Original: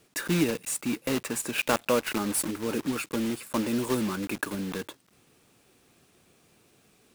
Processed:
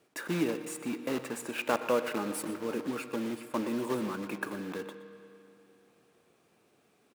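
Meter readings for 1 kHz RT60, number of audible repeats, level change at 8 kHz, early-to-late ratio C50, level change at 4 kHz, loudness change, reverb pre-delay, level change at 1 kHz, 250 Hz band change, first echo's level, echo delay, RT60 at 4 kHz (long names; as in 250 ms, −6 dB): 2.7 s, 1, −11.0 dB, 10.0 dB, −8.5 dB, −5.0 dB, 7 ms, −2.5 dB, −5.0 dB, −16.0 dB, 122 ms, 2.6 s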